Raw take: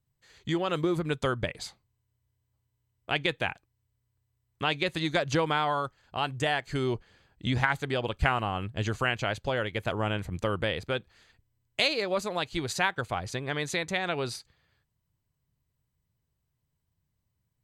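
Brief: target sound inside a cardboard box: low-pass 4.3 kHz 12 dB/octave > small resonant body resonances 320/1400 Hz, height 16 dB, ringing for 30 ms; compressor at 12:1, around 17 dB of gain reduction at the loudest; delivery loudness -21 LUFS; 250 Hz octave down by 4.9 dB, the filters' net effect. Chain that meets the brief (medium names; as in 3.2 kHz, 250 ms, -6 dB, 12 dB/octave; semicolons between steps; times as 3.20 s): peaking EQ 250 Hz -8 dB; compression 12:1, threshold -38 dBFS; low-pass 4.3 kHz 12 dB/octave; small resonant body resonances 320/1400 Hz, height 16 dB, ringing for 30 ms; trim +16 dB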